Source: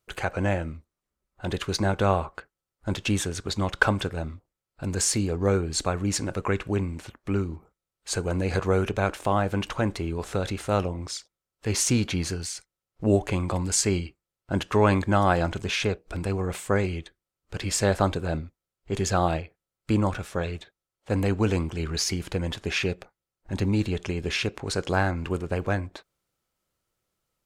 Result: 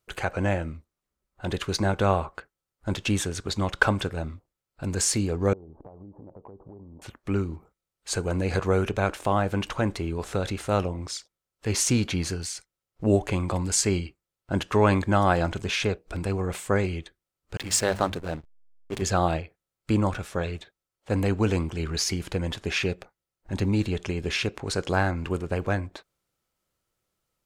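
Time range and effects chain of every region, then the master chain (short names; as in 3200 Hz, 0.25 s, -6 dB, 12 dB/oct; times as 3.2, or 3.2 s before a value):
5.53–7.02 steep low-pass 930 Hz 48 dB/oct + tilt +2 dB/oct + compressor 16:1, threshold -41 dBFS
17.57–19.02 tilt +1.5 dB/oct + notches 50/100/150/200 Hz + backlash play -30 dBFS
whole clip: dry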